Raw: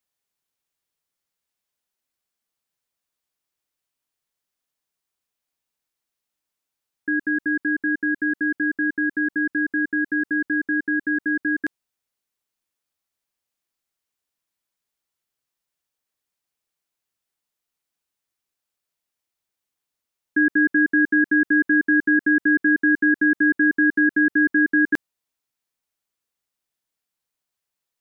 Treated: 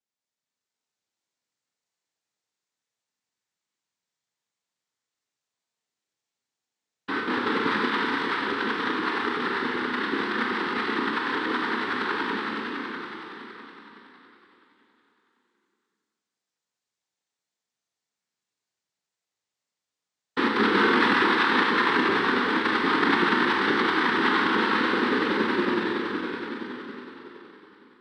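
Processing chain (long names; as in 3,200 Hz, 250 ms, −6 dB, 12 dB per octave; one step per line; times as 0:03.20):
pitch vibrato 8.1 Hz 35 cents
echo that builds up and dies away 93 ms, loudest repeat 5, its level −4.5 dB
cochlear-implant simulation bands 6
four-comb reverb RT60 1.3 s, combs from 25 ms, DRR 0.5 dB
level −7.5 dB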